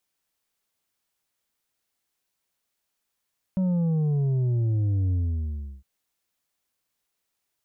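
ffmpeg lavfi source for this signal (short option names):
-f lavfi -i "aevalsrc='0.0841*clip((2.26-t)/0.71,0,1)*tanh(1.88*sin(2*PI*190*2.26/log(65/190)*(exp(log(65/190)*t/2.26)-1)))/tanh(1.88)':d=2.26:s=44100"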